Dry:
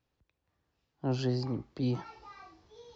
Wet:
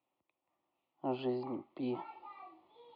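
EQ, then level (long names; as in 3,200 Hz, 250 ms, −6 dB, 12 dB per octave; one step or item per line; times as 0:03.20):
high-pass with resonance 390 Hz, resonance Q 4.6
high-frequency loss of the air 320 metres
phaser with its sweep stopped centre 1,600 Hz, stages 6
+2.0 dB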